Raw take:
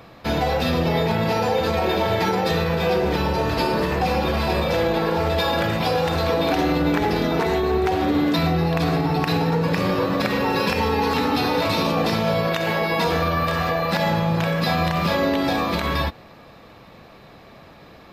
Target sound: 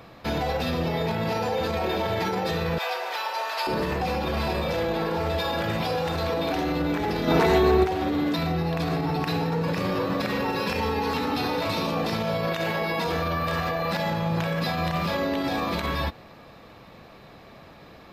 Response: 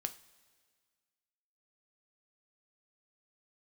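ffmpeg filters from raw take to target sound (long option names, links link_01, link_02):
-filter_complex "[0:a]asettb=1/sr,asplit=3[link_01][link_02][link_03];[link_01]atrim=end=2.784[link_04];[link_02]atrim=start=2.78:end=3.67,asetpts=PTS-STARTPTS,afade=type=in:duration=0.004:curve=qsin,afade=type=out:start_time=0.886:duration=0.004:curve=qsin,highpass=frequency=700:width=0.5412,highpass=frequency=700:width=1.3066[link_05];[link_03]atrim=start=3.666[link_06];[link_04][link_05]acrossfade=duration=0.004:curve1=hsin:curve2=qsin[link_07];[link_07][link_06]acrossfade=duration=0.004:curve1=qsin:curve2=hsin,alimiter=limit=-16dB:level=0:latency=1:release=42,asplit=3[link_08][link_09][link_10];[link_08]afade=type=out:start_time=7.27:duration=0.02[link_11];[link_09]acontrast=81,afade=type=in:start_time=7.27:duration=0.02,afade=type=out:start_time=7.83:duration=0.02[link_12];[link_10]afade=type=in:start_time=7.83:duration=0.02[link_13];[link_11][link_12][link_13]amix=inputs=3:normalize=0,volume=-2dB"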